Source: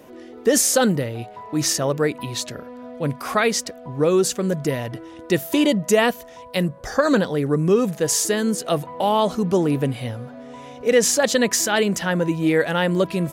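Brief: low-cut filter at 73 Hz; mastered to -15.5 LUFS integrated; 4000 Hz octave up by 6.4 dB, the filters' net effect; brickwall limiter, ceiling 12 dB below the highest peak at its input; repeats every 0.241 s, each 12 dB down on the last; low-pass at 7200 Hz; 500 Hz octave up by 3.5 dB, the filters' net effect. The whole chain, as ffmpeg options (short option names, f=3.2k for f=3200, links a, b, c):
-af "highpass=73,lowpass=7.2k,equalizer=f=500:t=o:g=4,equalizer=f=4k:t=o:g=9,alimiter=limit=-13dB:level=0:latency=1,aecho=1:1:241|482|723:0.251|0.0628|0.0157,volume=7dB"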